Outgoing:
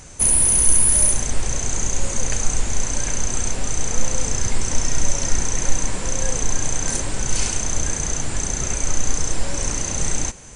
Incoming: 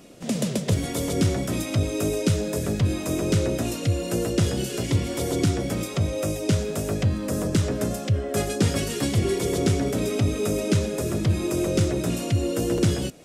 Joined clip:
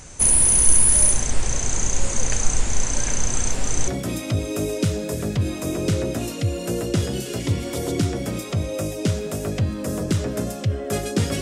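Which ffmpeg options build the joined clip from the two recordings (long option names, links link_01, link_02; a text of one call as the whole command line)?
ffmpeg -i cue0.wav -i cue1.wav -filter_complex "[1:a]asplit=2[link_01][link_02];[0:a]apad=whole_dur=11.41,atrim=end=11.41,atrim=end=3.882[link_03];[link_02]atrim=start=1.318:end=8.85[link_04];[link_01]atrim=start=0.37:end=1.32,asetpts=PTS-STARTPTS,volume=-17dB,afade=type=in:duration=0.004:curve=hsin,afade=type=out:start_time=0.946:duration=0.004:curve=hsin,adelay=2930[link_05];[link_03][link_04]acrossfade=duration=0.004:curve1=hsin:curve2=hsin[link_06];[link_06][link_05]amix=inputs=2:normalize=0" out.wav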